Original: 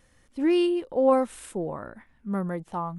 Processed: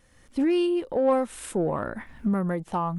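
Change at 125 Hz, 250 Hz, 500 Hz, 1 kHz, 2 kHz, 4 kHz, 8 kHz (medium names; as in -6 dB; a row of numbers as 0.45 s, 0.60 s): +4.5 dB, +1.0 dB, -0.5 dB, +0.5 dB, +1.5 dB, -1.0 dB, +4.0 dB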